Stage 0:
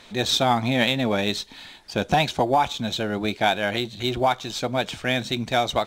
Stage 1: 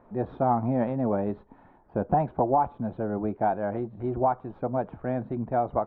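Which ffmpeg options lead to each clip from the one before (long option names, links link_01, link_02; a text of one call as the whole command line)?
ffmpeg -i in.wav -af "lowpass=frequency=1100:width=0.5412,lowpass=frequency=1100:width=1.3066,volume=-2.5dB" out.wav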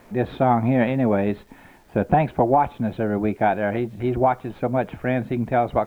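ffmpeg -i in.wav -af "highshelf=frequency=1600:width_type=q:width=1.5:gain=12,acrusher=bits=10:mix=0:aa=0.000001,volume=7dB" out.wav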